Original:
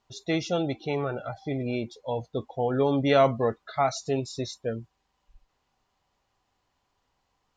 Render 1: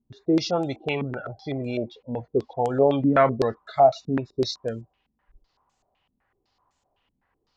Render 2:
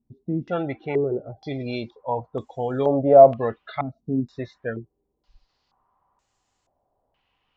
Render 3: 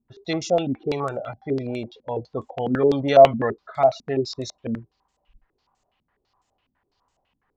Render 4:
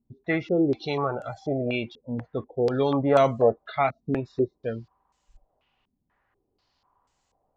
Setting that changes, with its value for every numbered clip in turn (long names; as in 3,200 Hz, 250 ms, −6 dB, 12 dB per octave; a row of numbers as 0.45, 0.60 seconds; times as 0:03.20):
low-pass on a step sequencer, speed: 7.9, 2.1, 12, 4.1 Hertz